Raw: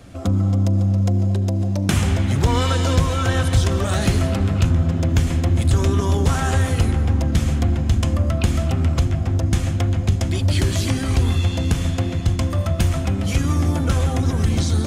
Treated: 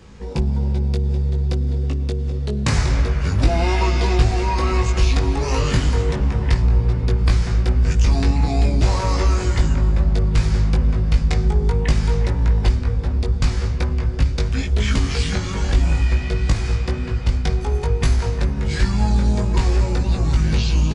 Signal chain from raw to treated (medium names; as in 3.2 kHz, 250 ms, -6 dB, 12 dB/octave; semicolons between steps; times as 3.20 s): tape speed -29%; doubling 19 ms -4 dB; trim -1 dB